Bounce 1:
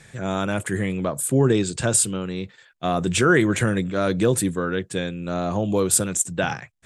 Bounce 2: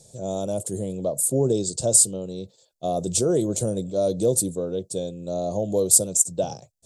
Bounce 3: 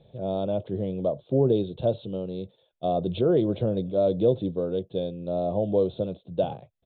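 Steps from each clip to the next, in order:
EQ curve 320 Hz 0 dB, 600 Hz +9 dB, 1800 Hz -30 dB, 4400 Hz +6 dB, 6400 Hz +9 dB; gain -5.5 dB
downsampling 8000 Hz

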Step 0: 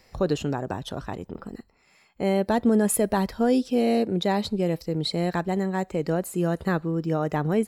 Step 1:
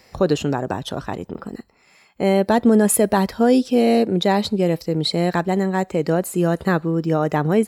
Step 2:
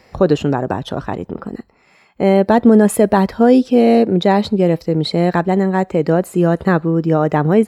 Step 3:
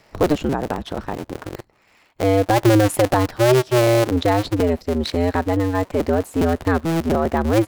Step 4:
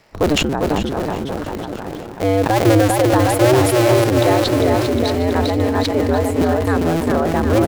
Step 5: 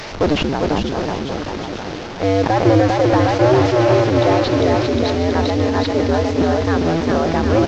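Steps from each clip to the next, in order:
HPF 100 Hz 6 dB/oct; gain +6.5 dB
high shelf 3800 Hz -12 dB; gain +5 dB
cycle switcher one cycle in 2, inverted; gain -4.5 dB
on a send: bouncing-ball echo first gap 0.4 s, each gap 0.9×, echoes 5; on the sum: sustainer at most 35 dB/s
delta modulation 32 kbps, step -24.5 dBFS

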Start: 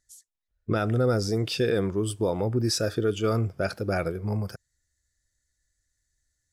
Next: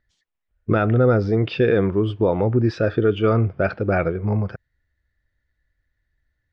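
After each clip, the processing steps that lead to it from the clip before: LPF 2900 Hz 24 dB/oct; gain +7 dB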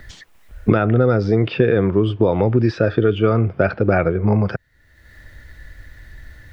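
three-band squash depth 100%; gain +2 dB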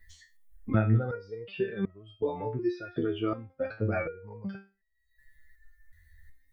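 per-bin expansion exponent 1.5; stepped resonator 2.7 Hz 81–640 Hz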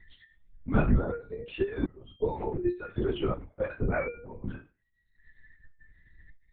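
LPC vocoder at 8 kHz whisper; gain +1 dB

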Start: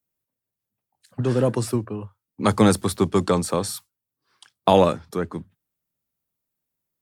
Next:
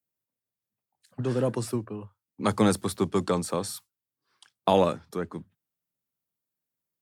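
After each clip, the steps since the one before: HPF 94 Hz; gain -5.5 dB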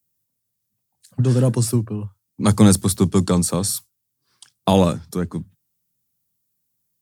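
tone controls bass +13 dB, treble +12 dB; gain +2.5 dB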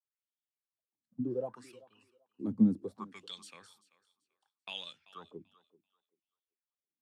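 wah 0.67 Hz 230–3400 Hz, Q 8.2; thinning echo 0.387 s, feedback 22%, high-pass 320 Hz, level -19 dB; gain -4.5 dB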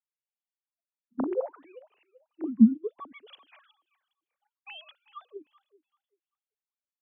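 sine-wave speech; gain +6.5 dB

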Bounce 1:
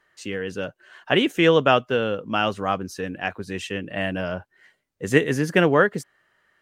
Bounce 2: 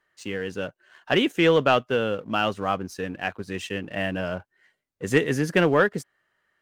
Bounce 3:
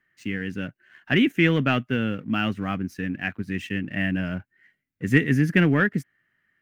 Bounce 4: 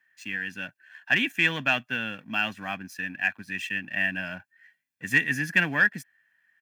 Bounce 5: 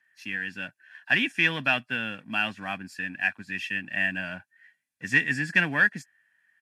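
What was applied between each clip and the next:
sample leveller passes 1; gain -5 dB
ten-band EQ 125 Hz +6 dB, 250 Hz +8 dB, 500 Hz -10 dB, 1000 Hz -9 dB, 2000 Hz +8 dB, 4000 Hz -7 dB, 8000 Hz -8 dB
HPF 1300 Hz 6 dB/oct; comb 1.2 ms, depth 62%; in parallel at -9.5 dB: overloaded stage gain 17.5 dB
nonlinear frequency compression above 3900 Hz 1.5:1

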